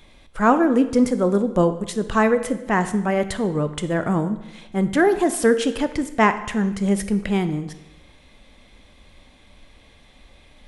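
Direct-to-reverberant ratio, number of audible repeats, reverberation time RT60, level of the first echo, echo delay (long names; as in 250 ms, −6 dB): 10.0 dB, no echo audible, 0.95 s, no echo audible, no echo audible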